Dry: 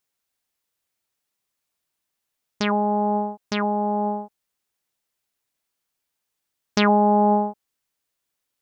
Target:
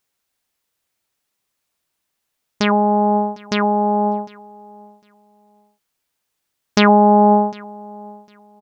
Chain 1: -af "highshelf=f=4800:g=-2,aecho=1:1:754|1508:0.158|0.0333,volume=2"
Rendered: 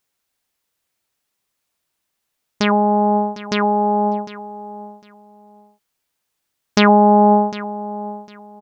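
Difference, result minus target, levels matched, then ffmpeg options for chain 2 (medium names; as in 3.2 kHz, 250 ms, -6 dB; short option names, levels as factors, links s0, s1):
echo-to-direct +8 dB
-af "highshelf=f=4800:g=-2,aecho=1:1:754|1508:0.0631|0.0133,volume=2"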